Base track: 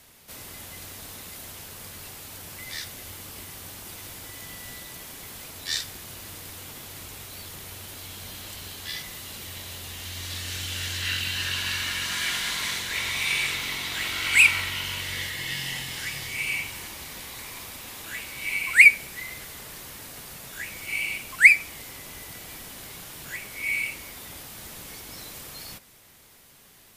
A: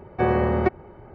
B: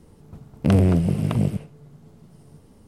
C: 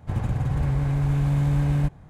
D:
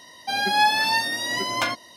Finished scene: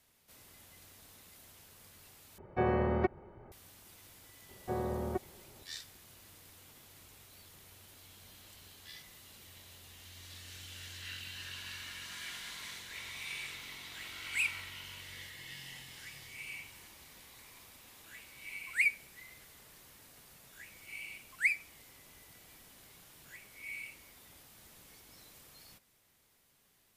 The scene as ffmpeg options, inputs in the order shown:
-filter_complex "[1:a]asplit=2[s0][s1];[0:a]volume=0.15[s2];[s1]lowpass=1300[s3];[s2]asplit=2[s4][s5];[s4]atrim=end=2.384[s6];[s0]atrim=end=1.14,asetpts=PTS-STARTPTS,volume=0.355[s7];[s5]atrim=start=3.516[s8];[s3]atrim=end=1.14,asetpts=PTS-STARTPTS,volume=0.188,afade=t=in:d=0.004:c=hsin,afade=t=out:st=1.136:d=0.004:c=hsin,adelay=198009S[s9];[s6][s7]acrossfade=d=0.004:c1=hsin:c2=hsin[s10];[s10][s8]acrossfade=d=0.004:c1=hsin:c2=hsin[s11];[s11][s9]amix=inputs=2:normalize=0"

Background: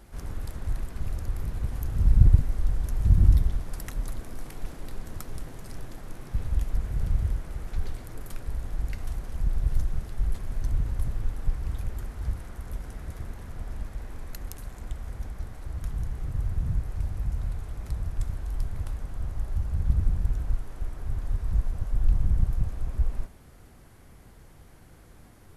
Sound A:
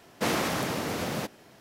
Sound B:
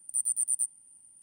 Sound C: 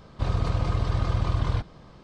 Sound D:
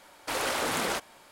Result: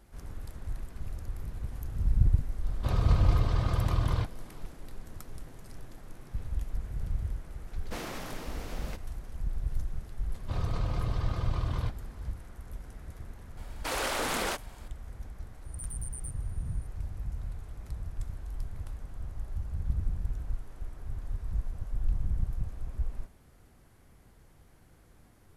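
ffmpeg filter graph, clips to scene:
-filter_complex "[3:a]asplit=2[s0][s1];[0:a]volume=0.447[s2];[2:a]acompressor=threshold=0.0282:ratio=6:attack=3.2:release=140:knee=1:detection=peak[s3];[s0]atrim=end=2.03,asetpts=PTS-STARTPTS,volume=0.708,afade=t=in:d=0.004:c=hsin,afade=t=out:st=2.026:d=0.004:c=hsin,adelay=2640[s4];[1:a]atrim=end=1.6,asetpts=PTS-STARTPTS,volume=0.251,afade=t=in:d=0.004:c=hsin,afade=t=out:st=1.596:d=0.004:c=hsin,adelay=339570S[s5];[s1]atrim=end=2.03,asetpts=PTS-STARTPTS,volume=0.447,afade=t=in:d=0.004:c=hsin,afade=t=out:st=2.026:d=0.004:c=hsin,adelay=10290[s6];[4:a]atrim=end=1.31,asetpts=PTS-STARTPTS,volume=0.794,afade=t=in:d=0.004:c=hsin,afade=t=out:st=1.306:d=0.004:c=hsin,adelay=13570[s7];[s3]atrim=end=1.22,asetpts=PTS-STARTPTS,volume=0.422,afade=t=in:d=0.004:c=hsin,afade=t=out:st=1.216:d=0.004:c=hsin,adelay=15650[s8];[s2][s4][s5][s6][s7][s8]amix=inputs=6:normalize=0"

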